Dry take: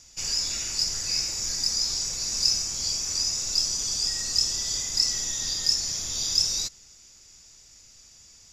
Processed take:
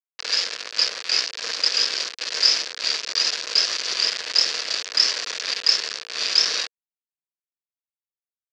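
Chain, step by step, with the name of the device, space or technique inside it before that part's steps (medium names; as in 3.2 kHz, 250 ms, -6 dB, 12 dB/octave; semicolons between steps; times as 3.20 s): hand-held game console (bit crusher 4-bit; cabinet simulation 450–5200 Hz, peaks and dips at 470 Hz +7 dB, 840 Hz -7 dB, 1.7 kHz +5 dB, 2.6 kHz +4 dB, 4.5 kHz +6 dB); trim +5 dB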